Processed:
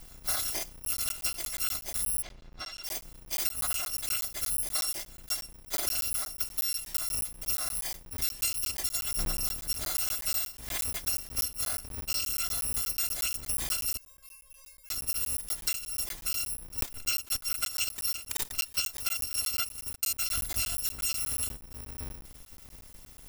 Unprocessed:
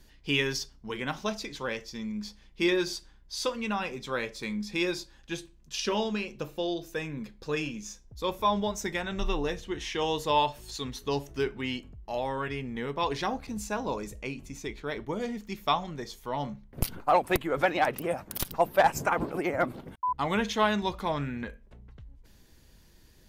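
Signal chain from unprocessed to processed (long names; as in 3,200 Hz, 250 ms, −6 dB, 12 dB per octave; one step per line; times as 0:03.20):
samples in bit-reversed order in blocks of 256 samples
0:20.28–0:20.78: low-shelf EQ 220 Hz +10 dB
downward compressor 10 to 1, threshold −35 dBFS, peak gain reduction 18 dB
0:02.22–0:02.84: high-frequency loss of the air 170 metres
0:13.97–0:14.90: tuned comb filter 540 Hz, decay 0.4 s, mix 100%
regular buffer underruns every 0.12 s, samples 512, zero, from 0:00.85
level +7.5 dB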